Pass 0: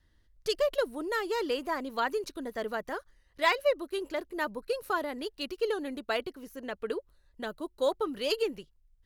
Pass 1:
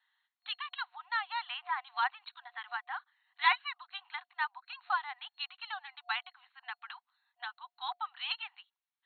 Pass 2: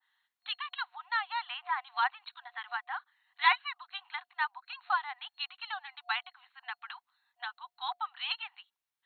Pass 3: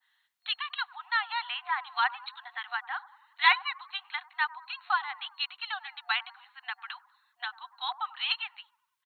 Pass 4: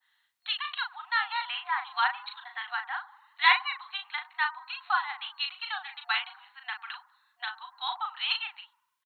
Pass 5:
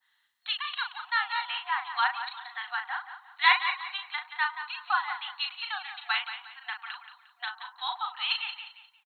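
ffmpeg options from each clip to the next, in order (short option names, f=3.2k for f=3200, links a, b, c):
-af "afftfilt=real='re*between(b*sr/4096,720,4300)':imag='im*between(b*sr/4096,720,4300)':win_size=4096:overlap=0.75"
-af "adynamicequalizer=threshold=0.00794:dfrequency=1800:dqfactor=0.7:tfrequency=1800:tqfactor=0.7:attack=5:release=100:ratio=0.375:range=2:mode=cutabove:tftype=highshelf,volume=2dB"
-filter_complex "[0:a]acrossover=split=1400[a][b];[a]asplit=7[c][d][e][f][g][h][i];[d]adelay=96,afreqshift=31,volume=-13dB[j];[e]adelay=192,afreqshift=62,volume=-18dB[k];[f]adelay=288,afreqshift=93,volume=-23.1dB[l];[g]adelay=384,afreqshift=124,volume=-28.1dB[m];[h]adelay=480,afreqshift=155,volume=-33.1dB[n];[i]adelay=576,afreqshift=186,volume=-38.2dB[o];[c][j][k][l][m][n][o]amix=inputs=7:normalize=0[p];[b]acontrast=30[q];[p][q]amix=inputs=2:normalize=0"
-filter_complex "[0:a]asplit=2[a][b];[b]adelay=38,volume=-6dB[c];[a][c]amix=inputs=2:normalize=0"
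-af "aecho=1:1:177|354|531:0.299|0.0955|0.0306"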